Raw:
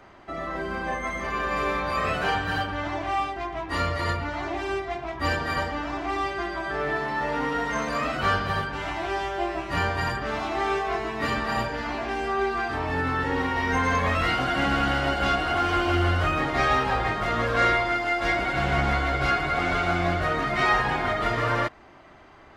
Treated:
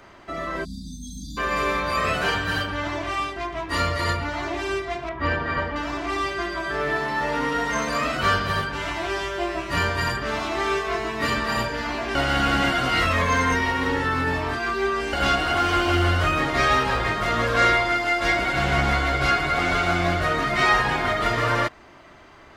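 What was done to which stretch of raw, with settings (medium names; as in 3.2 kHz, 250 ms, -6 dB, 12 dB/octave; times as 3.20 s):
0.64–1.37 s: spectral selection erased 310–3300 Hz
5.09–5.76 s: low-pass 2.3 kHz
12.15–15.13 s: reverse
whole clip: treble shelf 3.6 kHz +7 dB; band-stop 780 Hz, Q 14; trim +2 dB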